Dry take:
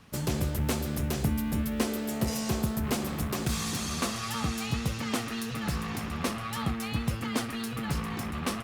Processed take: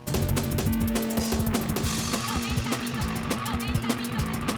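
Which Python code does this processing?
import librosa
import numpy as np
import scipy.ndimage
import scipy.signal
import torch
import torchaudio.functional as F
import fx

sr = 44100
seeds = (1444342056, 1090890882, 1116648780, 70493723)

y = fx.dmg_buzz(x, sr, base_hz=120.0, harmonics=9, level_db=-50.0, tilt_db=-4, odd_only=False)
y = fx.stretch_grains(y, sr, factor=0.53, grain_ms=42.0)
y = F.gain(torch.from_numpy(y), 5.0).numpy()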